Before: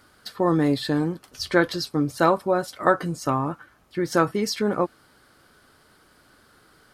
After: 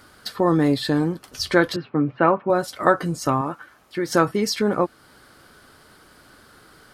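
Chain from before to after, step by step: 1.76–2.50 s: Chebyshev band-pass 110–2700 Hz, order 4; 3.41–4.09 s: bass shelf 210 Hz -11 dB; in parallel at -2 dB: compression, threshold -33 dBFS, peak gain reduction 18.5 dB; on the sum: trim +1 dB

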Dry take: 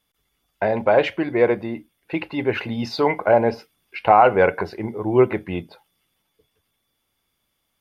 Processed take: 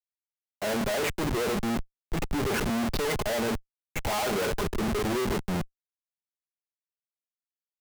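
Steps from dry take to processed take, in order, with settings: treble shelf 3.4 kHz -11.5 dB; comb 4.8 ms, depth 56%; Schmitt trigger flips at -30.5 dBFS; three bands expanded up and down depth 70%; trim -6 dB

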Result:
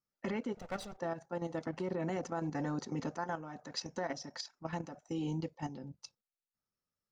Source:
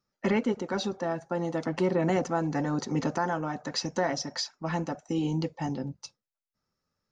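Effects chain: 0.57–0.98 s: comb filter that takes the minimum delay 1.5 ms; peak limiter -19 dBFS, peak gain reduction 4 dB; level held to a coarse grid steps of 10 dB; trim -5.5 dB

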